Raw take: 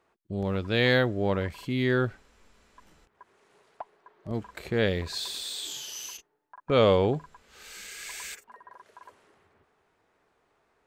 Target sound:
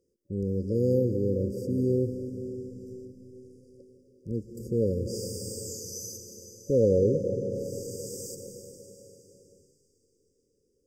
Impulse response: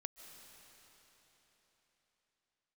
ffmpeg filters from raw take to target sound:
-filter_complex "[1:a]atrim=start_sample=2205[link_01];[0:a][link_01]afir=irnorm=-1:irlink=0,acontrast=24,afftfilt=real='re*(1-between(b*sr/4096,570,4700))':imag='im*(1-between(b*sr/4096,570,4700))':win_size=4096:overlap=0.75"

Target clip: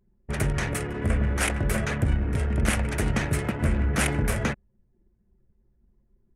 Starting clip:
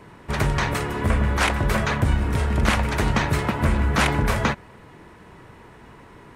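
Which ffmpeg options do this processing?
ffmpeg -i in.wav -af "anlmdn=39.8,equalizer=frequency=1000:width_type=o:width=0.67:gain=-10,equalizer=frequency=4000:width_type=o:width=0.67:gain=-7,equalizer=frequency=10000:width_type=o:width=0.67:gain=11,volume=-3dB" out.wav

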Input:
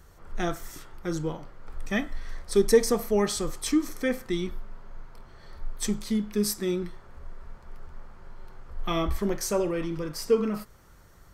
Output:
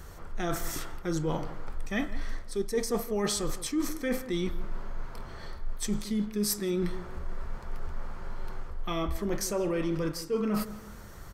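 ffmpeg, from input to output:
ffmpeg -i in.wav -filter_complex "[0:a]areverse,acompressor=threshold=-34dB:ratio=16,areverse,asplit=2[link_01][link_02];[link_02]adelay=165,lowpass=frequency=1700:poles=1,volume=-14dB,asplit=2[link_03][link_04];[link_04]adelay=165,lowpass=frequency=1700:poles=1,volume=0.38,asplit=2[link_05][link_06];[link_06]adelay=165,lowpass=frequency=1700:poles=1,volume=0.38,asplit=2[link_07][link_08];[link_08]adelay=165,lowpass=frequency=1700:poles=1,volume=0.38[link_09];[link_01][link_03][link_05][link_07][link_09]amix=inputs=5:normalize=0,volume=8dB" out.wav

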